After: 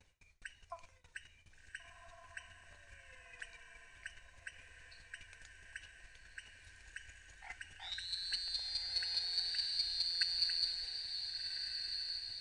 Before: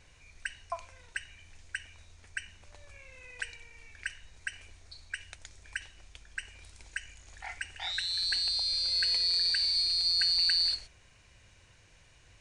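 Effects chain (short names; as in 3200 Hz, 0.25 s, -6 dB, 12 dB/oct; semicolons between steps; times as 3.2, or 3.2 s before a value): bin magnitudes rounded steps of 15 dB; chopper 4.8 Hz, depth 60%, duty 10%; diffused feedback echo 1.461 s, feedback 50%, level -5 dB; gate with hold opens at -51 dBFS; gain -3.5 dB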